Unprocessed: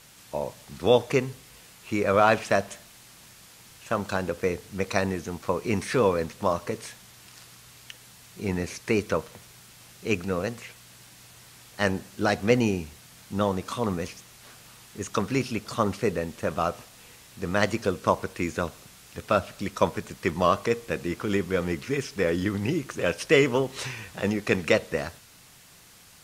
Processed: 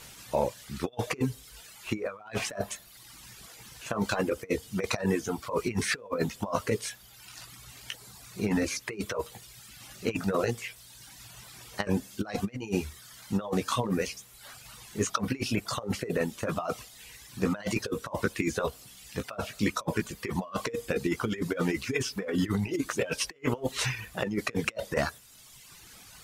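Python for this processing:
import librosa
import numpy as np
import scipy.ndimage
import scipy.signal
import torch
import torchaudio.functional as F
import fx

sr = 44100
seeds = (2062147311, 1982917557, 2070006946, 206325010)

y = fx.chorus_voices(x, sr, voices=6, hz=0.21, base_ms=17, depth_ms=2.5, mix_pct=35)
y = fx.over_compress(y, sr, threshold_db=-31.0, ratio=-0.5)
y = fx.dereverb_blind(y, sr, rt60_s=1.4)
y = y * 10.0 ** (3.5 / 20.0)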